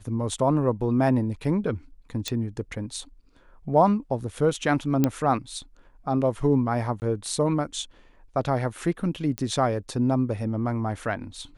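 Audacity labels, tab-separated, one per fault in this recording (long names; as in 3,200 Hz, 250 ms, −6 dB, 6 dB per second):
2.280000	2.280000	click −13 dBFS
5.040000	5.040000	click −8 dBFS
7.000000	7.020000	drop-out 19 ms
9.380000	9.380000	click −14 dBFS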